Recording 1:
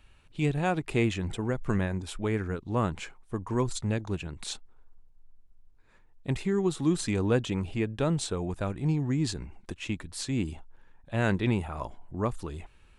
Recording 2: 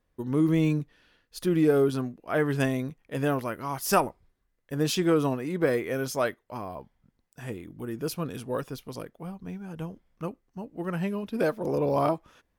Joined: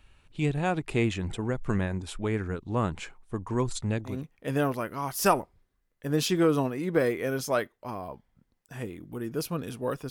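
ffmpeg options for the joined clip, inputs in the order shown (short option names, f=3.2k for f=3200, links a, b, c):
-filter_complex "[0:a]apad=whole_dur=10.1,atrim=end=10.1,atrim=end=4.22,asetpts=PTS-STARTPTS[a];[1:a]atrim=start=2.71:end=8.77,asetpts=PTS-STARTPTS[b];[a][b]acrossfade=d=0.18:c1=tri:c2=tri"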